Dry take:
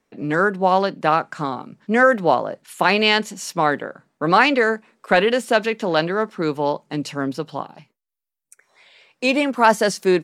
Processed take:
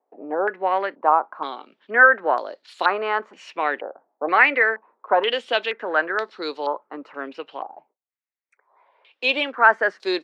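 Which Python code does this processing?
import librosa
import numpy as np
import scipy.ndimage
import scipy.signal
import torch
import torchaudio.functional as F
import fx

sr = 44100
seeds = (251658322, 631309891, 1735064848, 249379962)

y = scipy.signal.sosfilt(scipy.signal.butter(4, 330.0, 'highpass', fs=sr, output='sos'), x)
y = fx.filter_held_lowpass(y, sr, hz=2.1, low_hz=780.0, high_hz=4200.0)
y = y * 10.0 ** (-6.0 / 20.0)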